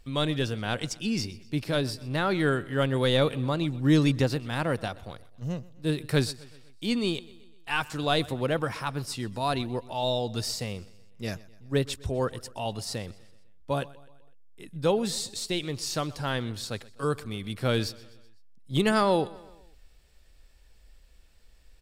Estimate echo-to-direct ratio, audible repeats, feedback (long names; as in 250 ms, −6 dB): −19.5 dB, 3, 52%